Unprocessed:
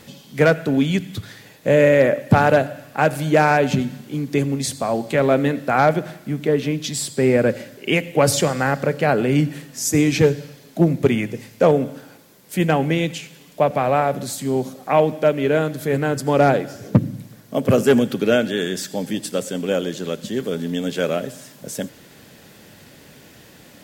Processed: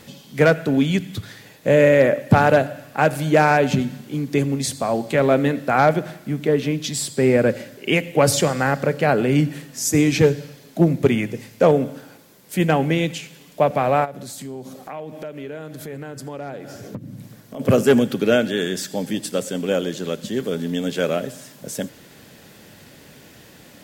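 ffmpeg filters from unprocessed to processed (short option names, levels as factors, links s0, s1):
-filter_complex "[0:a]asplit=3[s0][s1][s2];[s0]afade=t=out:st=14.04:d=0.02[s3];[s1]acompressor=threshold=0.0251:ratio=4:attack=3.2:release=140:knee=1:detection=peak,afade=t=in:st=14.04:d=0.02,afade=t=out:st=17.59:d=0.02[s4];[s2]afade=t=in:st=17.59:d=0.02[s5];[s3][s4][s5]amix=inputs=3:normalize=0"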